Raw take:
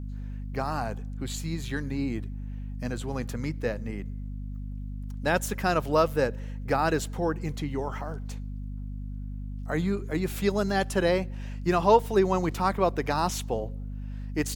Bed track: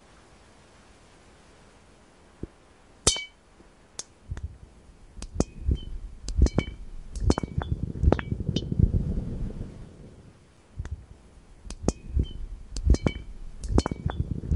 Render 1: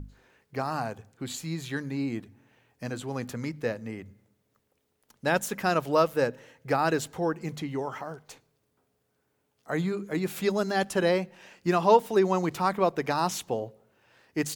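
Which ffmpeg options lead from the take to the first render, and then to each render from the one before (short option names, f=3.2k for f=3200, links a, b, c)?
-af "bandreject=f=50:t=h:w=6,bandreject=f=100:t=h:w=6,bandreject=f=150:t=h:w=6,bandreject=f=200:t=h:w=6,bandreject=f=250:t=h:w=6"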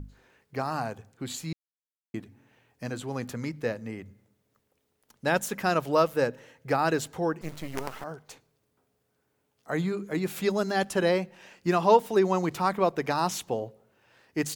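-filter_complex "[0:a]asettb=1/sr,asplit=3[a][b][c];[a]atrim=end=7.414[d];[b]atrim=start=7.41:end=8.04,asetpts=PTS-STARTPTS,afade=t=in:d=0.004:c=qsin,afade=t=out:st=0.626:d=0.004:c=qsin,acrusher=bits=5:dc=4:mix=0:aa=0.000001[e];[c]atrim=start=8.036[f];[d][e]acrossfade=d=0.004:c1=hsin:c2=qsin[g];[g][f]acrossfade=d=0.004:c1=qsin:c2=hsin,asplit=3[h][i][j];[h]atrim=end=1.53,asetpts=PTS-STARTPTS,afade=t=out:st=1.526:d=0.004:c=hsin[k];[i]atrim=start=1.53:end=2.14,asetpts=PTS-STARTPTS,volume=0[l];[j]atrim=start=2.14,asetpts=PTS-STARTPTS,afade=t=in:d=0.004:c=hsin[m];[k][l][m]concat=n=3:v=0:a=1"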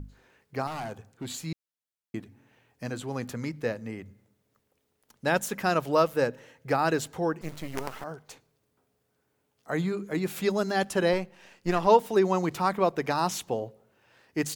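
-filter_complex "[0:a]asettb=1/sr,asplit=3[a][b][c];[a]atrim=end=0.674[d];[b]atrim=start=0.67:end=1.41,asetpts=PTS-STARTPTS,afade=t=in:d=0.004:c=qsin,afade=t=out:st=0.736:d=0.004:c=qsin,volume=31.5dB,asoftclip=hard,volume=-31.5dB[e];[c]atrim=start=1.406[f];[d][e]acrossfade=d=0.004:c1=hsin:c2=qsin[g];[g][f]acrossfade=d=0.004:c1=qsin:c2=hsin,asettb=1/sr,asplit=3[h][i][j];[h]atrim=end=11.134[k];[i]atrim=start=11.13:end=11.87,asetpts=PTS-STARTPTS,afade=t=in:d=0.004:c=qsin,afade=t=out:st=0.736:d=0.004:c=qsin,aeval=exprs='if(lt(val(0),0),0.447*val(0),val(0))':c=same[l];[j]atrim=start=11.866[m];[k][l]acrossfade=d=0.004:c1=hsin:c2=qsin[n];[n][m]acrossfade=d=0.004:c1=qsin:c2=hsin"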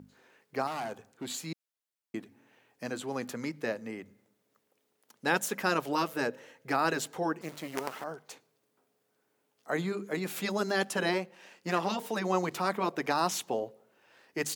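-af "highpass=230,afftfilt=real='re*lt(hypot(re,im),0.398)':imag='im*lt(hypot(re,im),0.398)':win_size=1024:overlap=0.75"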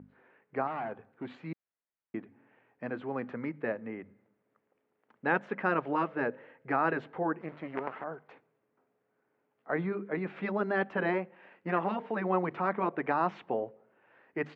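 -af "lowpass=f=2.2k:w=0.5412,lowpass=f=2.2k:w=1.3066"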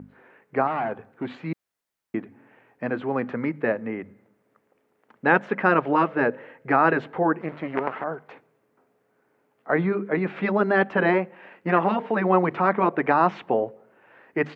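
-af "volume=9.5dB"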